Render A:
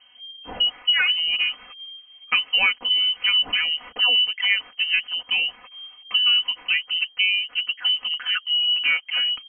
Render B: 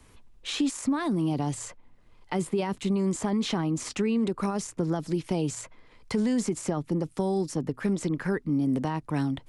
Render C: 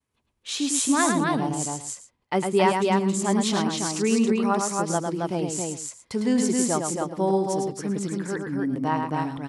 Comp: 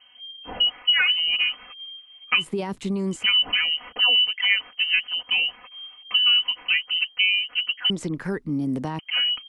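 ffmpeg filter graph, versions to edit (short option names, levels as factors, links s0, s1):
-filter_complex "[1:a]asplit=2[s0][s1];[0:a]asplit=3[s2][s3][s4];[s2]atrim=end=2.52[s5];[s0]atrim=start=2.36:end=3.27[s6];[s3]atrim=start=3.11:end=7.902[s7];[s1]atrim=start=7.898:end=8.992[s8];[s4]atrim=start=8.988[s9];[s5][s6]acrossfade=d=0.16:c1=tri:c2=tri[s10];[s10][s7]acrossfade=d=0.16:c1=tri:c2=tri[s11];[s11][s8]acrossfade=d=0.004:c1=hsin:c2=hsin[s12];[s12][s9]acrossfade=d=0.004:c1=hsin:c2=hsin"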